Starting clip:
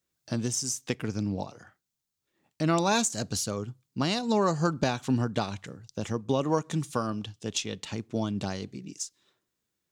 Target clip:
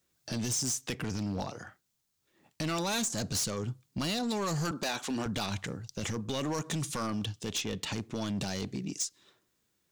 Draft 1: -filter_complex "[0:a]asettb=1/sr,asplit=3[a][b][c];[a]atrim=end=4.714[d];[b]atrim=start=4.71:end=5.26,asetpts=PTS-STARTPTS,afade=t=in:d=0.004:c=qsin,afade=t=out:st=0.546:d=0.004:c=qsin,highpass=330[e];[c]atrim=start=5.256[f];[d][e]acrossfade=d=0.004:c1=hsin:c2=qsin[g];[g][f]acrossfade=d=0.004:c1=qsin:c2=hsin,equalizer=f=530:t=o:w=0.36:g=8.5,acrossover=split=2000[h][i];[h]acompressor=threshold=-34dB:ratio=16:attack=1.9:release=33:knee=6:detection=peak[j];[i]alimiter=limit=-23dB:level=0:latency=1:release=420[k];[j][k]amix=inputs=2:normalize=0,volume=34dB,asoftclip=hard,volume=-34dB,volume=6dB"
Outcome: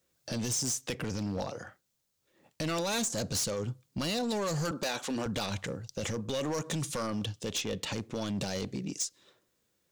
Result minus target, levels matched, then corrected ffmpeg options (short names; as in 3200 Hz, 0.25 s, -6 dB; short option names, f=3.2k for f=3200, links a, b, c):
500 Hz band +3.0 dB
-filter_complex "[0:a]asettb=1/sr,asplit=3[a][b][c];[a]atrim=end=4.714[d];[b]atrim=start=4.71:end=5.26,asetpts=PTS-STARTPTS,afade=t=in:d=0.004:c=qsin,afade=t=out:st=0.546:d=0.004:c=qsin,highpass=330[e];[c]atrim=start=5.256[f];[d][e]acrossfade=d=0.004:c1=hsin:c2=qsin[g];[g][f]acrossfade=d=0.004:c1=qsin:c2=hsin,acrossover=split=2000[h][i];[h]acompressor=threshold=-34dB:ratio=16:attack=1.9:release=33:knee=6:detection=peak[j];[i]alimiter=limit=-23dB:level=0:latency=1:release=420[k];[j][k]amix=inputs=2:normalize=0,volume=34dB,asoftclip=hard,volume=-34dB,volume=6dB"